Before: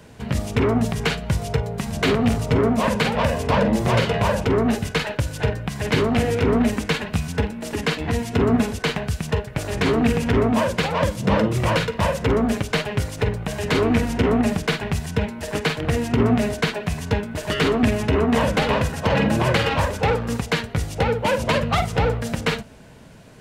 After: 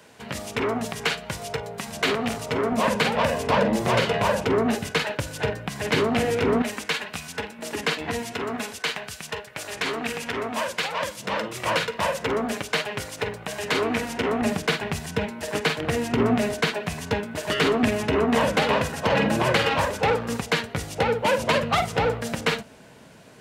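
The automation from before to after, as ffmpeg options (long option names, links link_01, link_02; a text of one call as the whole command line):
ffmpeg -i in.wav -af "asetnsamples=nb_out_samples=441:pad=0,asendcmd='2.72 highpass f 270;6.62 highpass f 1000;7.59 highpass f 460;8.33 highpass f 1300;11.66 highpass f 590;14.42 highpass f 250',highpass=frequency=620:poles=1" out.wav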